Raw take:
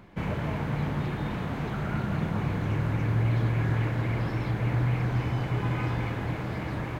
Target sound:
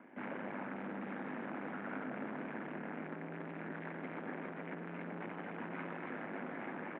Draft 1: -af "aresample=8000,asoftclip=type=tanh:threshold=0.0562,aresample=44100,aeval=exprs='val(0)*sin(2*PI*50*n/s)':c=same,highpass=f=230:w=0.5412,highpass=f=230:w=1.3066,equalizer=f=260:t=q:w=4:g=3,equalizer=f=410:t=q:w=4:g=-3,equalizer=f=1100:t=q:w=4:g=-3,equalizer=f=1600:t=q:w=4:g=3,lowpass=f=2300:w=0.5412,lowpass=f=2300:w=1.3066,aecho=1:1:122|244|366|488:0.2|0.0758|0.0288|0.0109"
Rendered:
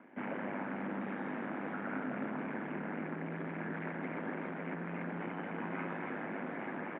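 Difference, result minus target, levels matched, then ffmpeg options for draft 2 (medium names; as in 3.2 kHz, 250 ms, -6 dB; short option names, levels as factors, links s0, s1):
saturation: distortion -7 dB
-af "aresample=8000,asoftclip=type=tanh:threshold=0.0224,aresample=44100,aeval=exprs='val(0)*sin(2*PI*50*n/s)':c=same,highpass=f=230:w=0.5412,highpass=f=230:w=1.3066,equalizer=f=260:t=q:w=4:g=3,equalizer=f=410:t=q:w=4:g=-3,equalizer=f=1100:t=q:w=4:g=-3,equalizer=f=1600:t=q:w=4:g=3,lowpass=f=2300:w=0.5412,lowpass=f=2300:w=1.3066,aecho=1:1:122|244|366|488:0.2|0.0758|0.0288|0.0109"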